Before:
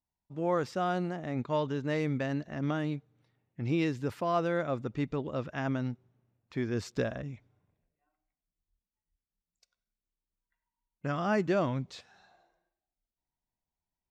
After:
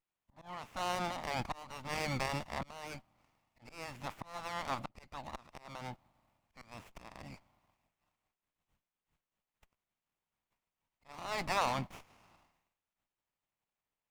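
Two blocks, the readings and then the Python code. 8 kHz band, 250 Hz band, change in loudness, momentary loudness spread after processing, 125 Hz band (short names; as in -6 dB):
+4.5 dB, -15.0 dB, -7.0 dB, 18 LU, -12.0 dB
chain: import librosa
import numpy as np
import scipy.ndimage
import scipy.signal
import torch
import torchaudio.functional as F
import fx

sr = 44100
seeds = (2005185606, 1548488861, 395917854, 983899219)

y = fx.spec_clip(x, sr, under_db=25)
y = fx.auto_swell(y, sr, attack_ms=650.0)
y = fx.fixed_phaser(y, sr, hz=1600.0, stages=6)
y = fx.running_max(y, sr, window=9)
y = y * 10.0 ** (3.0 / 20.0)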